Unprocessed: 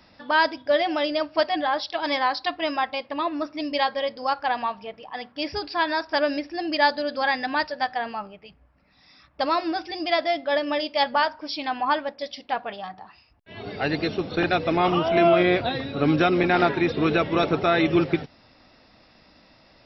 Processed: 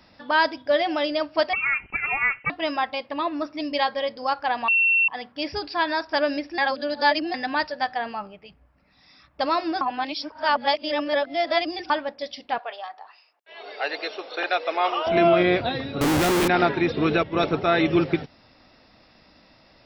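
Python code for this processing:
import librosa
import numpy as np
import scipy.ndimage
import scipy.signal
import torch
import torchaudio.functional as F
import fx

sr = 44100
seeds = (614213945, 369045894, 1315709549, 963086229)

y = fx.freq_invert(x, sr, carrier_hz=3000, at=(1.53, 2.5))
y = fx.highpass(y, sr, hz=490.0, slope=24, at=(12.58, 15.07))
y = fx.schmitt(y, sr, flips_db=-31.0, at=(16.01, 16.48))
y = fx.band_widen(y, sr, depth_pct=70, at=(17.23, 17.81))
y = fx.edit(y, sr, fx.bleep(start_s=4.68, length_s=0.4, hz=2710.0, db=-16.0),
    fx.reverse_span(start_s=6.58, length_s=0.76),
    fx.reverse_span(start_s=9.81, length_s=2.09), tone=tone)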